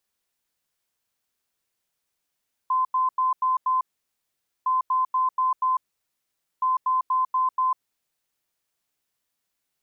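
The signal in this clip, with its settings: beep pattern sine 1030 Hz, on 0.15 s, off 0.09 s, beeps 5, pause 0.85 s, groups 3, -19 dBFS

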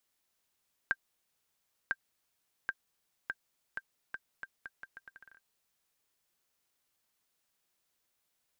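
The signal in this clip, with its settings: bouncing ball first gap 1.00 s, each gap 0.78, 1580 Hz, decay 46 ms -17 dBFS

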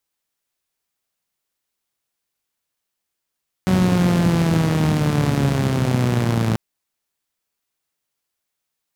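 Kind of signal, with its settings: four-cylinder engine model, changing speed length 2.89 s, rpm 5600, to 3300, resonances 120/170 Hz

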